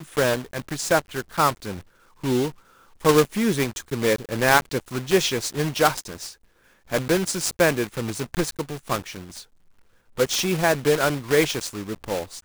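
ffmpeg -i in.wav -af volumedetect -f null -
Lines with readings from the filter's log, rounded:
mean_volume: -24.2 dB
max_volume: -2.9 dB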